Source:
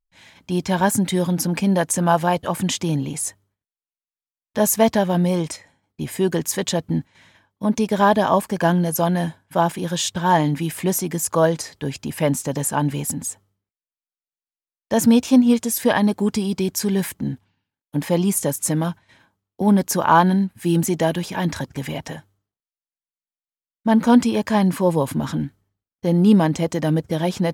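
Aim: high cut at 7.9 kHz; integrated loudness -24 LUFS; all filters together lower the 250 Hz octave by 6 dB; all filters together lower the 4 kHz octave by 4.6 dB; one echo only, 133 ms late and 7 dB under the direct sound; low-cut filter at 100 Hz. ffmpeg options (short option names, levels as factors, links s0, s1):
-af "highpass=100,lowpass=7900,equalizer=f=250:t=o:g=-8,equalizer=f=4000:t=o:g=-6,aecho=1:1:133:0.447,volume=0.891"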